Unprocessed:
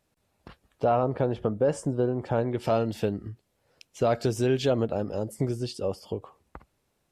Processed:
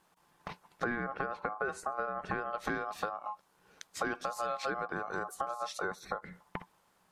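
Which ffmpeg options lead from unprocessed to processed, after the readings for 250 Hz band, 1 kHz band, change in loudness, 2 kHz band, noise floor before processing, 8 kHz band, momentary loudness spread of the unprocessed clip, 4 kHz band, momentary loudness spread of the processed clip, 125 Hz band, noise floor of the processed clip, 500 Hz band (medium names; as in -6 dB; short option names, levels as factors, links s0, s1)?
-13.5 dB, -2.5 dB, -9.5 dB, +6.0 dB, -74 dBFS, -4.5 dB, 8 LU, -7.5 dB, 12 LU, -19.5 dB, -71 dBFS, -13.5 dB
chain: -af "acompressor=threshold=0.0141:ratio=6,aeval=exprs='val(0)*sin(2*PI*950*n/s)':c=same,equalizer=f=180:t=o:w=0.32:g=12,volume=2.11"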